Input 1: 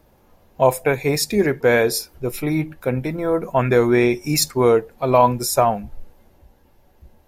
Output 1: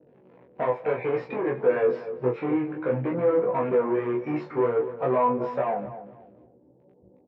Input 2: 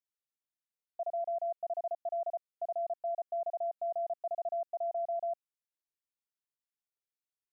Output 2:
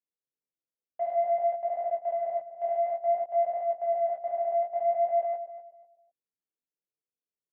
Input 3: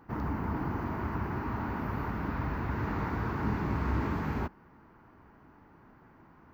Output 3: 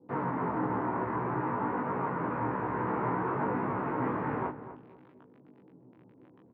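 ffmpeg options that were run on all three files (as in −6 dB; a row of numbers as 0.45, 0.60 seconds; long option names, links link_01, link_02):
-filter_complex "[0:a]asplit=2[link_01][link_02];[link_02]alimiter=limit=-11.5dB:level=0:latency=1,volume=-2.5dB[link_03];[link_01][link_03]amix=inputs=2:normalize=0,acompressor=threshold=-18dB:ratio=6,acrossover=split=490[link_04][link_05];[link_04]crystalizer=i=6:c=0[link_06];[link_05]acrusher=bits=7:mix=0:aa=0.000001[link_07];[link_06][link_07]amix=inputs=2:normalize=0,asoftclip=type=tanh:threshold=-23dB,flanger=delay=20:depth=6.5:speed=0.56,highpass=frequency=140:width=0.5412,highpass=frequency=140:width=1.3066,equalizer=frequency=210:width_type=q:width=4:gain=-7,equalizer=frequency=500:width_type=q:width=4:gain=6,equalizer=frequency=970:width_type=q:width=4:gain=4,lowpass=frequency=2300:width=0.5412,lowpass=frequency=2300:width=1.3066,asplit=2[link_08][link_09];[link_09]adelay=16,volume=-3dB[link_10];[link_08][link_10]amix=inputs=2:normalize=0,asplit=2[link_11][link_12];[link_12]adelay=247,lowpass=frequency=1000:poles=1,volume=-11dB,asplit=2[link_13][link_14];[link_14]adelay=247,lowpass=frequency=1000:poles=1,volume=0.3,asplit=2[link_15][link_16];[link_16]adelay=247,lowpass=frequency=1000:poles=1,volume=0.3[link_17];[link_11][link_13][link_15][link_17]amix=inputs=4:normalize=0,adynamicequalizer=threshold=0.00631:dfrequency=1600:dqfactor=0.7:tfrequency=1600:tqfactor=0.7:attack=5:release=100:ratio=0.375:range=2.5:mode=cutabove:tftype=highshelf,volume=1.5dB"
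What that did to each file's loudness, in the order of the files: −7.0, +8.0, +1.5 LU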